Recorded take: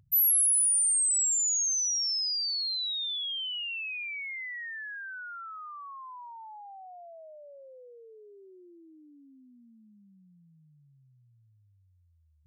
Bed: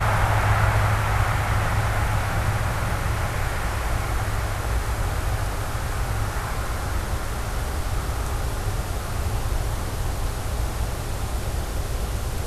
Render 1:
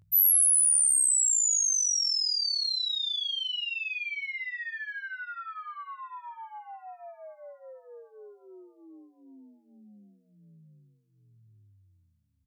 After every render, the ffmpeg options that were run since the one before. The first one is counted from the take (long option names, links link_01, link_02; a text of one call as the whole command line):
ffmpeg -i in.wav -filter_complex "[0:a]asplit=2[link_01][link_02];[link_02]adelay=19,volume=-2dB[link_03];[link_01][link_03]amix=inputs=2:normalize=0,asplit=2[link_04][link_05];[link_05]adelay=756,lowpass=frequency=3700:poles=1,volume=-20.5dB,asplit=2[link_06][link_07];[link_07]adelay=756,lowpass=frequency=3700:poles=1,volume=0.52,asplit=2[link_08][link_09];[link_09]adelay=756,lowpass=frequency=3700:poles=1,volume=0.52,asplit=2[link_10][link_11];[link_11]adelay=756,lowpass=frequency=3700:poles=1,volume=0.52[link_12];[link_04][link_06][link_08][link_10][link_12]amix=inputs=5:normalize=0" out.wav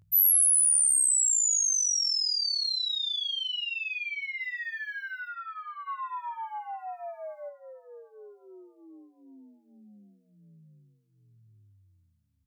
ffmpeg -i in.wav -filter_complex "[0:a]asplit=3[link_01][link_02][link_03];[link_01]afade=type=out:start_time=4.39:duration=0.02[link_04];[link_02]aemphasis=mode=production:type=50fm,afade=type=in:start_time=4.39:duration=0.02,afade=type=out:start_time=5.27:duration=0.02[link_05];[link_03]afade=type=in:start_time=5.27:duration=0.02[link_06];[link_04][link_05][link_06]amix=inputs=3:normalize=0,asplit=3[link_07][link_08][link_09];[link_07]afade=type=out:start_time=5.86:duration=0.02[link_10];[link_08]acontrast=55,afade=type=in:start_time=5.86:duration=0.02,afade=type=out:start_time=7.48:duration=0.02[link_11];[link_09]afade=type=in:start_time=7.48:duration=0.02[link_12];[link_10][link_11][link_12]amix=inputs=3:normalize=0" out.wav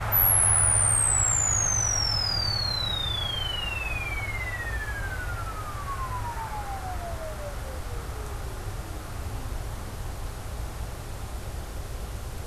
ffmpeg -i in.wav -i bed.wav -filter_complex "[1:a]volume=-8.5dB[link_01];[0:a][link_01]amix=inputs=2:normalize=0" out.wav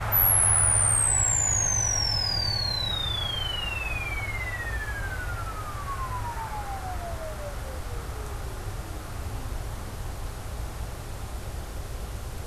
ffmpeg -i in.wav -filter_complex "[0:a]asettb=1/sr,asplit=3[link_01][link_02][link_03];[link_01]atrim=end=1.064[link_04];[link_02]atrim=start=1.06:end=2.91,asetpts=PTS-STARTPTS,afade=type=in:duration=0.004:curve=qsin,afade=type=out:start_time=1.846:duration=0.004:curve=qsin,asuperstop=centerf=1300:order=8:qfactor=4.9[link_05];[link_03]atrim=start=2.906[link_06];[link_04][link_05]acrossfade=duration=0.004:curve1=hsin:curve2=qsin[link_07];[link_07][link_06]acrossfade=duration=0.004:curve1=qsin:curve2=hsin" out.wav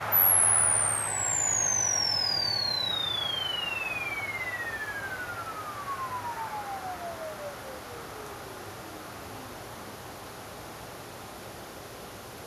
ffmpeg -i in.wav -af "highpass=210,equalizer=frequency=8200:width_type=o:width=0.24:gain=-9.5" out.wav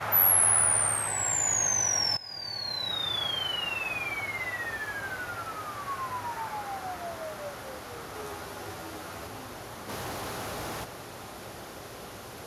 ffmpeg -i in.wav -filter_complex "[0:a]asettb=1/sr,asplit=3[link_01][link_02][link_03];[link_01]atrim=end=8.134[link_04];[link_02]atrim=start=8.13:end=9.27,asetpts=PTS-STARTPTS,afade=type=in:duration=0.004:curve=qsin,afade=type=out:start_time=1.136:duration=0.004:curve=qsin,asplit=2[link_05][link_06];[link_06]adelay=12,volume=-3.5dB[link_07];[link_05][link_07]amix=inputs=2:normalize=0,atrim=end_sample=50274[link_08];[link_03]atrim=start=9.266[link_09];[link_04][link_08]acrossfade=duration=0.004:curve1=hsin:curve2=qsin[link_10];[link_10][link_09]acrossfade=duration=0.004:curve1=qsin:curve2=hsin,asplit=3[link_11][link_12][link_13];[link_11]afade=type=out:start_time=9.88:duration=0.02[link_14];[link_12]aeval=exprs='0.0316*sin(PI/2*1.58*val(0)/0.0316)':channel_layout=same,afade=type=in:start_time=9.88:duration=0.02,afade=type=out:start_time=10.83:duration=0.02[link_15];[link_13]afade=type=in:start_time=10.83:duration=0.02[link_16];[link_14][link_15][link_16]amix=inputs=3:normalize=0,asplit=2[link_17][link_18];[link_17]atrim=end=2.17,asetpts=PTS-STARTPTS,afade=type=out:start_time=2.166:duration=0.004:curve=hsin:silence=0.112202[link_19];[link_18]atrim=start=2.17,asetpts=PTS-STARTPTS,afade=type=in:duration=0.98:silence=0.112202[link_20];[link_19][link_20]concat=n=2:v=0:a=1" out.wav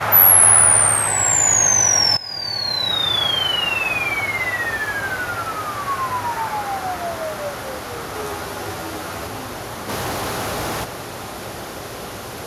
ffmpeg -i in.wav -af "volume=11.5dB,alimiter=limit=-2dB:level=0:latency=1" out.wav